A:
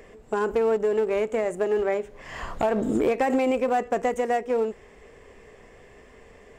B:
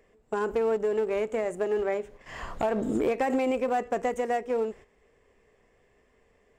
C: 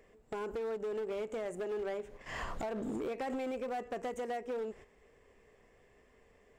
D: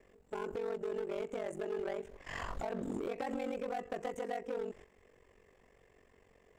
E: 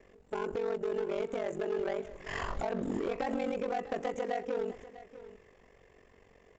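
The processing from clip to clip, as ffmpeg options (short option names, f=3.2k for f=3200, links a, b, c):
-af "agate=range=-11dB:threshold=-42dB:ratio=16:detection=peak,volume=-3.5dB"
-af "acompressor=threshold=-34dB:ratio=5,volume=33dB,asoftclip=hard,volume=-33dB"
-af "aeval=exprs='val(0)*sin(2*PI*23*n/s)':c=same,volume=2dB"
-af "aecho=1:1:647:0.158,aresample=16000,aresample=44100,volume=4.5dB"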